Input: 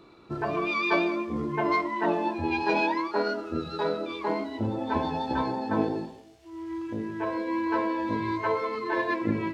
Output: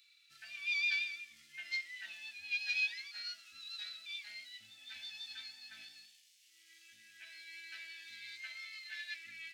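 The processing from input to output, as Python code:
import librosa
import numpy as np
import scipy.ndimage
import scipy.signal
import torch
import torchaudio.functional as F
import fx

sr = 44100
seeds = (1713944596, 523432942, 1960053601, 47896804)

y = scipy.signal.sosfilt(scipy.signal.cheby2(4, 40, 1100.0, 'highpass', fs=sr, output='sos'), x)
y = fx.high_shelf(y, sr, hz=5300.0, db=8.5)
y = y * 10.0 ** (-3.5 / 20.0)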